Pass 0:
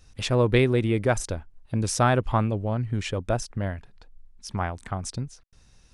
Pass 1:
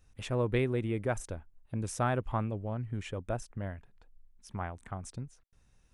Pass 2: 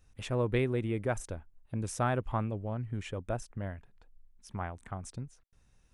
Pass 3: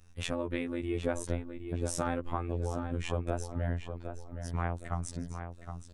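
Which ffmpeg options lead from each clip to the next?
ffmpeg -i in.wav -af "equalizer=frequency=4700:width_type=o:width=0.85:gain=-9,volume=-9dB" out.wav
ffmpeg -i in.wav -af anull out.wav
ffmpeg -i in.wav -filter_complex "[0:a]acompressor=threshold=-33dB:ratio=6,afftfilt=real='hypot(re,im)*cos(PI*b)':imag='0':win_size=2048:overlap=0.75,asplit=2[link_01][link_02];[link_02]adelay=766,lowpass=frequency=3700:poles=1,volume=-8dB,asplit=2[link_03][link_04];[link_04]adelay=766,lowpass=frequency=3700:poles=1,volume=0.38,asplit=2[link_05][link_06];[link_06]adelay=766,lowpass=frequency=3700:poles=1,volume=0.38,asplit=2[link_07][link_08];[link_08]adelay=766,lowpass=frequency=3700:poles=1,volume=0.38[link_09];[link_01][link_03][link_05][link_07][link_09]amix=inputs=5:normalize=0,volume=8dB" out.wav

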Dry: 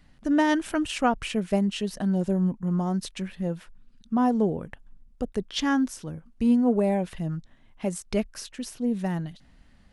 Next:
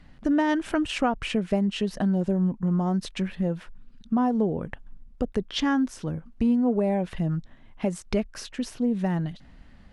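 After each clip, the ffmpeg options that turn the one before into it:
ffmpeg -i in.wav -af "acompressor=threshold=-29dB:ratio=2.5,aemphasis=mode=reproduction:type=50kf,volume=6dB" out.wav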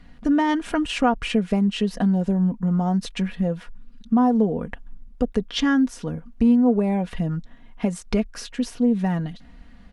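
ffmpeg -i in.wav -af "aecho=1:1:4.2:0.5,volume=2dB" out.wav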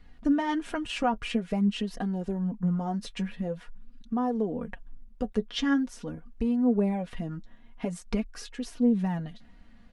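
ffmpeg -i in.wav -af "flanger=delay=2.3:depth=7.2:regen=36:speed=0.47:shape=sinusoidal,volume=-3dB" out.wav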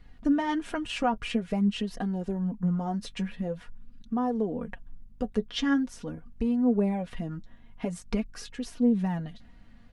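ffmpeg -i in.wav -af "aeval=exprs='val(0)+0.00112*(sin(2*PI*50*n/s)+sin(2*PI*2*50*n/s)/2+sin(2*PI*3*50*n/s)/3+sin(2*PI*4*50*n/s)/4+sin(2*PI*5*50*n/s)/5)':channel_layout=same" out.wav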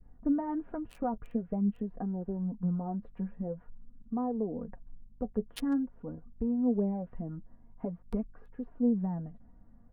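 ffmpeg -i in.wav -filter_complex "[0:a]adynamicequalizer=threshold=0.00562:dfrequency=1100:dqfactor=1:tfrequency=1100:tqfactor=1:attack=5:release=100:ratio=0.375:range=2.5:mode=cutabove:tftype=bell,acrossover=split=600|1200[link_01][link_02][link_03];[link_03]acrusher=bits=3:mix=0:aa=0.5[link_04];[link_01][link_02][link_04]amix=inputs=3:normalize=0,volume=-4dB" out.wav

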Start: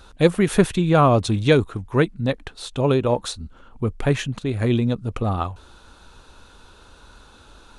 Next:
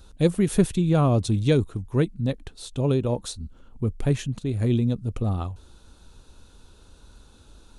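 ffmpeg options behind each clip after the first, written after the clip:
ffmpeg -i in.wav -af "equalizer=frequency=1400:width=0.38:gain=-12" out.wav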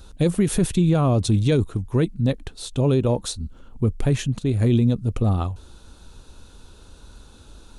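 ffmpeg -i in.wav -af "alimiter=limit=-15dB:level=0:latency=1:release=31,volume=5dB" out.wav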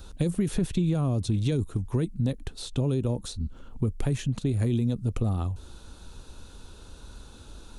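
ffmpeg -i in.wav -filter_complex "[0:a]acrossover=split=350|6300[link_01][link_02][link_03];[link_01]acompressor=threshold=-24dB:ratio=4[link_04];[link_02]acompressor=threshold=-37dB:ratio=4[link_05];[link_03]acompressor=threshold=-47dB:ratio=4[link_06];[link_04][link_05][link_06]amix=inputs=3:normalize=0" out.wav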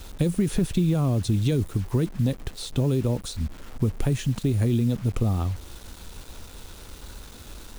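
ffmpeg -i in.wav -af "acrusher=bits=7:mix=0:aa=0.000001,volume=3dB" out.wav

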